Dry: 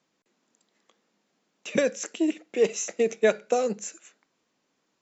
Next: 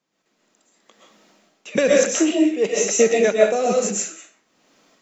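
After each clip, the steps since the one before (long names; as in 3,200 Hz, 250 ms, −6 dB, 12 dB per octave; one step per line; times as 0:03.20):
automatic gain control gain up to 15 dB
shaped tremolo triangle 1.1 Hz, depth 85%
convolution reverb RT60 0.45 s, pre-delay 90 ms, DRR −3.5 dB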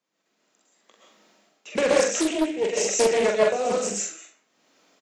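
high-pass filter 260 Hz 6 dB per octave
double-tracking delay 44 ms −4 dB
highs frequency-modulated by the lows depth 0.38 ms
level −4.5 dB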